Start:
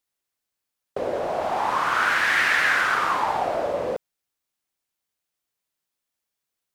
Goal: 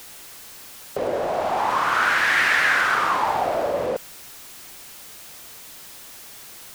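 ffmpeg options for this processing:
-filter_complex "[0:a]aeval=exprs='val(0)+0.5*0.0158*sgn(val(0))':c=same,asettb=1/sr,asplit=3[s0][s1][s2];[s0]atrim=end=3.254[s3];[s1]atrim=start=3.25:end=3.86,asetpts=PTS-STARTPTS,afade=t=in:d=0.004:c=qsin,afade=t=out:st=0.606:d=0.004:c=qsin,equalizer=f=15000:w=0.97:g=6[s4];[s2]atrim=start=3.856[s5];[s3][s4]acrossfade=d=0.004:c1=hsin:c2=qsin[s6];[s6][s5]acrossfade=d=0.004:c1=qsin:c2=hsin,volume=1.12"

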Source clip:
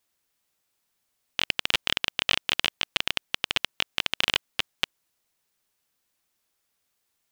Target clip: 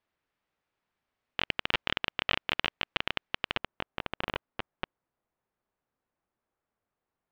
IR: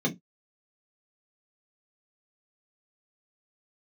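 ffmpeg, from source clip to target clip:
-af "asetnsamples=n=441:p=0,asendcmd='3.57 lowpass f 1200',lowpass=2200"

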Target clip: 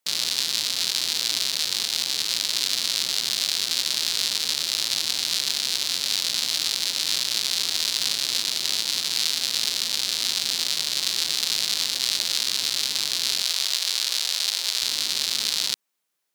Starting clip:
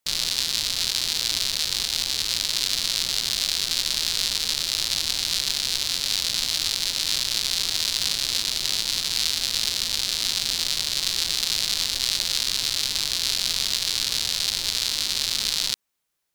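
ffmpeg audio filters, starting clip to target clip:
-af "asetnsamples=n=441:p=0,asendcmd='13.42 highpass f 490;14.83 highpass f 180',highpass=180"

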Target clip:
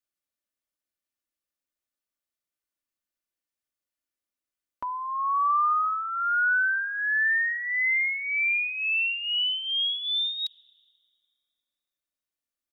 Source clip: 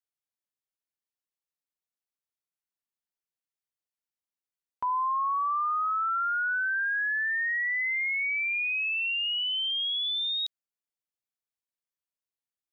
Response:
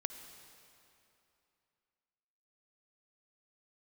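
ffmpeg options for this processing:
-filter_complex "[0:a]equalizer=f=880:w=5.1:g=-8,aecho=1:1:3.4:0.51,asplit=2[s0][s1];[1:a]atrim=start_sample=2205,asetrate=52920,aresample=44100,lowpass=2700[s2];[s1][s2]afir=irnorm=-1:irlink=0,volume=0.355[s3];[s0][s3]amix=inputs=2:normalize=0,volume=1.12"

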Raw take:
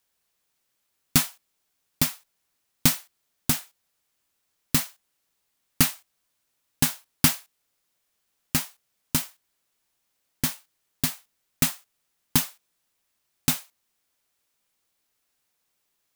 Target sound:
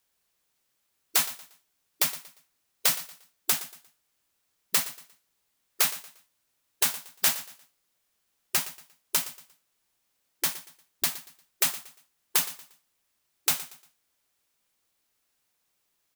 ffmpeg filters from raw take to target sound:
-filter_complex "[0:a]afftfilt=real='re*lt(hypot(re,im),0.158)':imag='im*lt(hypot(re,im),0.158)':win_size=1024:overlap=0.75,asplit=2[s0][s1];[s1]aecho=0:1:117|234|351:0.168|0.0504|0.0151[s2];[s0][s2]amix=inputs=2:normalize=0"

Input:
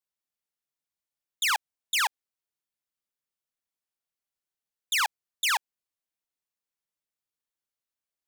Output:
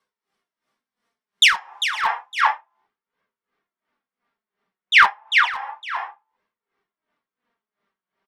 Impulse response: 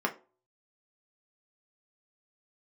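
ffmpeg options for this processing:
-filter_complex "[0:a]asetnsamples=n=441:p=0,asendcmd='2.01 lowpass f 3000',lowpass=7200,aecho=1:1:398:0.447[s0];[1:a]atrim=start_sample=2205[s1];[s0][s1]afir=irnorm=-1:irlink=0,volume=3.16,asoftclip=hard,volume=0.316,flanger=delay=1.8:depth=3.7:regen=45:speed=0.31:shape=triangular,apsyclip=5.01,acompressor=threshold=0.224:ratio=8,aeval=exprs='val(0)*pow(10,-18*(0.5-0.5*cos(2*PI*2.8*n/s))/20)':c=same,volume=1.78"

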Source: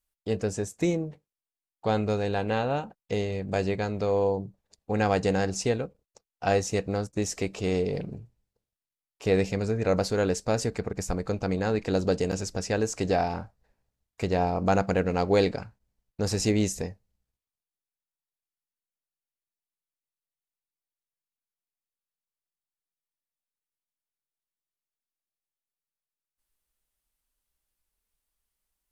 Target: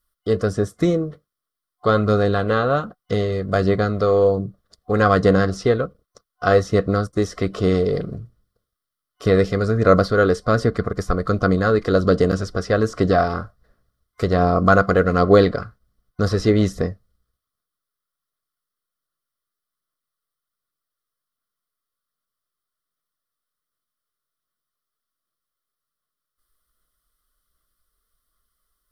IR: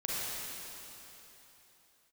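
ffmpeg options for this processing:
-filter_complex "[0:a]superequalizer=9b=0.282:10b=2.82:12b=0.282:15b=0.447,acrossover=split=4000[s0][s1];[s0]aphaser=in_gain=1:out_gain=1:delay=2.5:decay=0.25:speed=1.3:type=sinusoidal[s2];[s1]acompressor=threshold=0.00282:ratio=6[s3];[s2][s3]amix=inputs=2:normalize=0,volume=2.51"

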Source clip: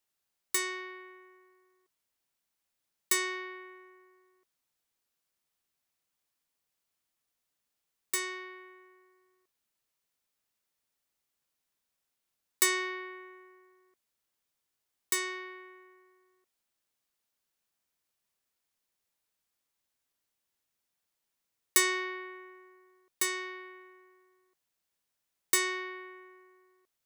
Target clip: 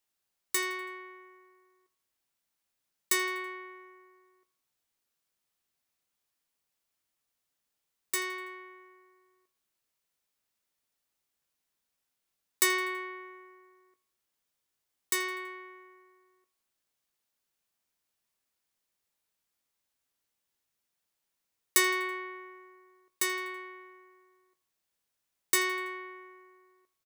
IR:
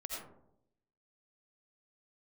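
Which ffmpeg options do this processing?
-filter_complex "[0:a]asplit=2[s0][s1];[s1]adelay=19,volume=0.266[s2];[s0][s2]amix=inputs=2:normalize=0,aecho=1:1:82|164|246|328:0.1|0.053|0.0281|0.0149"

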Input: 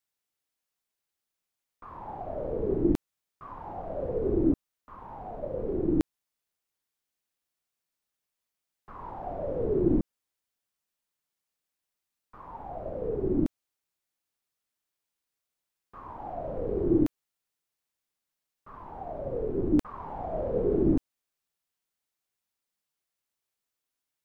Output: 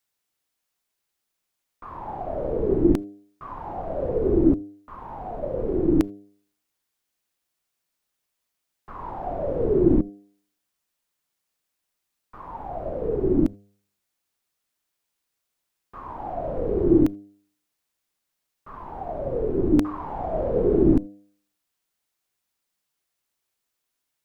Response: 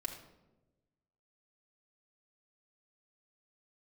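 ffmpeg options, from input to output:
-filter_complex "[0:a]bandreject=f=100.9:t=h:w=4,bandreject=f=201.8:t=h:w=4,bandreject=f=302.7:t=h:w=4,bandreject=f=403.6:t=h:w=4,bandreject=f=504.5:t=h:w=4,bandreject=f=605.4:t=h:w=4,bandreject=f=706.3:t=h:w=4,asplit=2[s0][s1];[1:a]atrim=start_sample=2205,afade=t=out:st=0.14:d=0.01,atrim=end_sample=6615[s2];[s1][s2]afir=irnorm=-1:irlink=0,volume=0.112[s3];[s0][s3]amix=inputs=2:normalize=0,volume=1.88"

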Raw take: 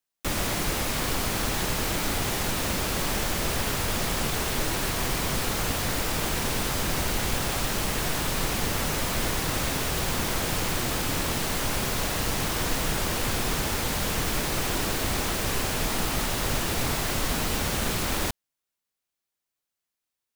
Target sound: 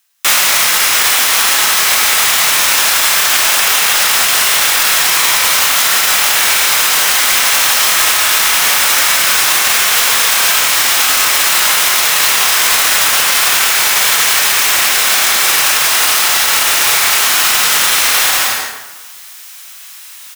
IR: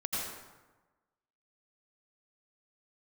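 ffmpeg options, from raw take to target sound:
-filter_complex "[0:a]highpass=1300,bandreject=f=4500:w=25,areverse,acompressor=mode=upward:threshold=0.0141:ratio=2.5,areverse,asoftclip=type=hard:threshold=0.0376,asplit=2[s0][s1];[s1]adelay=29,volume=0.473[s2];[s0][s2]amix=inputs=2:normalize=0,aecho=1:1:105|145.8:0.355|0.282,asplit=2[s3][s4];[1:a]atrim=start_sample=2205,adelay=83[s5];[s4][s5]afir=irnorm=-1:irlink=0,volume=0.447[s6];[s3][s6]amix=inputs=2:normalize=0,alimiter=level_in=15:limit=0.891:release=50:level=0:latency=1,volume=0.891"

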